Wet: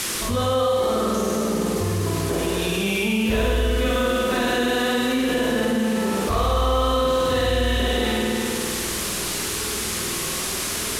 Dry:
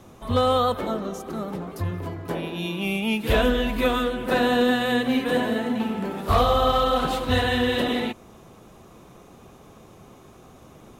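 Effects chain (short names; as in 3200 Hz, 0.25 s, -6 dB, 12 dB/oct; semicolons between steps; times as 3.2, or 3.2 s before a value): thirty-one-band EQ 125 Hz -5 dB, 400 Hz +4 dB, 800 Hz -4 dB, 6300 Hz +7 dB; flutter echo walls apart 8.6 m, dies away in 1.4 s; reverb RT60 1.3 s, pre-delay 93 ms, DRR 2.5 dB; band noise 970–12000 Hz -37 dBFS; fast leveller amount 70%; gain -8.5 dB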